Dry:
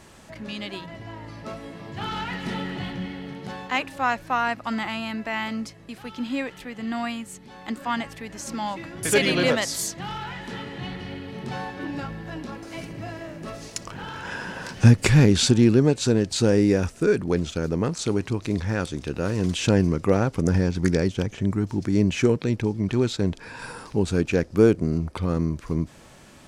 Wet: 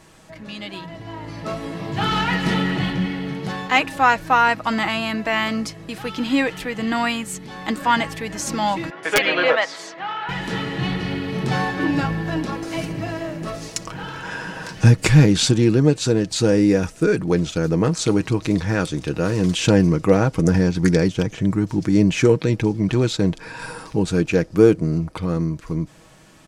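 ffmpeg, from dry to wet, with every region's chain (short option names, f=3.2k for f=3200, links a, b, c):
-filter_complex "[0:a]asettb=1/sr,asplit=3[a][b][c];[a]atrim=end=8.904[d];[b]atrim=start=8.9:end=10.29,asetpts=PTS-STARTPTS,afade=t=in:d=0.004:c=qsin,afade=t=out:st=1.386:d=0.004:c=qsin,highpass=590,lowpass=2.3k,aeval=exprs='(mod(4.47*val(0)+1,2)-1)/4.47':c=same[e];[c]atrim=start=10.286[f];[d][e]acrossfade=d=0.004:c1=hsin:c2=qsin[g];[g][f]acrossfade=d=0.004:c1=qsin:c2=hsin,aecho=1:1:6.3:0.44,dynaudnorm=f=260:g=11:m=11.5dB,volume=-1dB"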